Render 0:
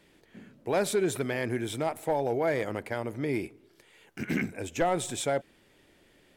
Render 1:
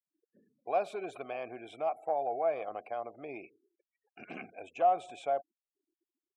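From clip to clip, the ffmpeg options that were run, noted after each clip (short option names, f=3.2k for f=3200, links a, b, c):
-filter_complex "[0:a]afftfilt=real='re*gte(hypot(re,im),0.00562)':imag='im*gte(hypot(re,im),0.00562)':win_size=1024:overlap=0.75,asplit=3[a][b][c];[a]bandpass=f=730:t=q:w=8,volume=0dB[d];[b]bandpass=f=1.09k:t=q:w=8,volume=-6dB[e];[c]bandpass=f=2.44k:t=q:w=8,volume=-9dB[f];[d][e][f]amix=inputs=3:normalize=0,volume=5dB"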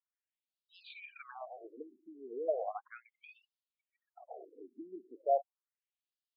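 -af "afftfilt=real='re*between(b*sr/1024,270*pow(3800/270,0.5+0.5*sin(2*PI*0.36*pts/sr))/1.41,270*pow(3800/270,0.5+0.5*sin(2*PI*0.36*pts/sr))*1.41)':imag='im*between(b*sr/1024,270*pow(3800/270,0.5+0.5*sin(2*PI*0.36*pts/sr))/1.41,270*pow(3800/270,0.5+0.5*sin(2*PI*0.36*pts/sr))*1.41)':win_size=1024:overlap=0.75,volume=2.5dB"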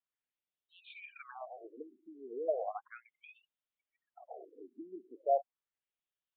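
-af "aresample=8000,aresample=44100"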